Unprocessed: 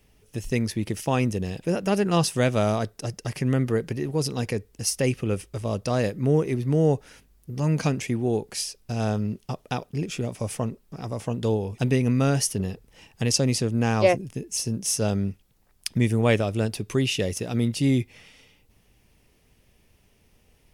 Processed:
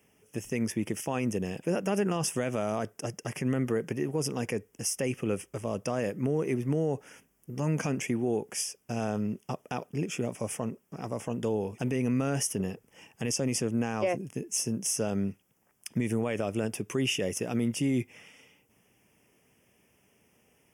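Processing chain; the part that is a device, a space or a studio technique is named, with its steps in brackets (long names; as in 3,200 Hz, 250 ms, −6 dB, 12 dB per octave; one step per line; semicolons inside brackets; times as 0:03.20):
PA system with an anti-feedback notch (high-pass filter 160 Hz 12 dB per octave; Butterworth band-reject 4,100 Hz, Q 2; brickwall limiter −18 dBFS, peak gain reduction 11.5 dB)
level −1 dB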